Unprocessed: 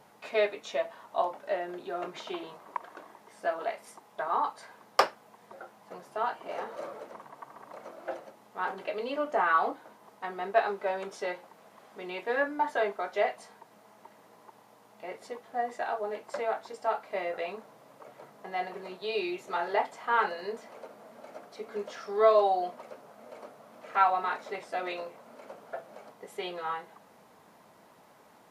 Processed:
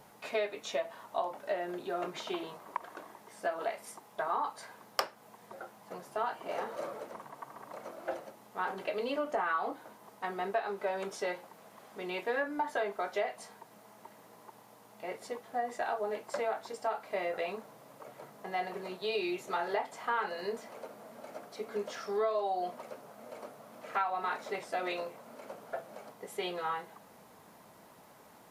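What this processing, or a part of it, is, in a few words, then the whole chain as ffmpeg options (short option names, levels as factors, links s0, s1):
ASMR close-microphone chain: -af "lowshelf=f=140:g=6,acompressor=threshold=0.0355:ratio=6,highshelf=f=8000:g=8"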